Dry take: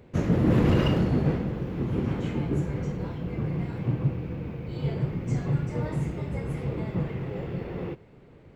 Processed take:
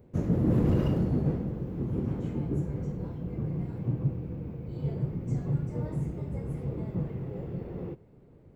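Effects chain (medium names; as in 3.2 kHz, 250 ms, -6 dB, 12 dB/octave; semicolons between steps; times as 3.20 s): peaking EQ 2.7 kHz -12.5 dB 3 oct; trim -2.5 dB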